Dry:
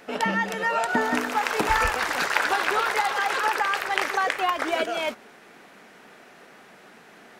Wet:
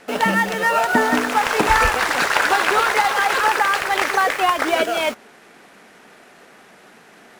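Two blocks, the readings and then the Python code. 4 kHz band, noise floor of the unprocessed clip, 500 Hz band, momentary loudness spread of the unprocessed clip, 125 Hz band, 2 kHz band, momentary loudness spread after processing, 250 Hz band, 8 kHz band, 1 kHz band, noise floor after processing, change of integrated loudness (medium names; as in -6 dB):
+6.5 dB, -51 dBFS, +6.5 dB, 3 LU, +7.0 dB, +6.0 dB, 3 LU, +6.5 dB, +7.5 dB, +6.5 dB, -48 dBFS, +6.5 dB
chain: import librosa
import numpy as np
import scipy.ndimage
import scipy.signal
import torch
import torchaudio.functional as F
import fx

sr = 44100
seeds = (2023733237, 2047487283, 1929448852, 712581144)

p1 = fx.cvsd(x, sr, bps=64000)
p2 = fx.quant_dither(p1, sr, seeds[0], bits=6, dither='none')
p3 = p1 + (p2 * librosa.db_to_amplitude(-4.0))
y = p3 * librosa.db_to_amplitude(2.5)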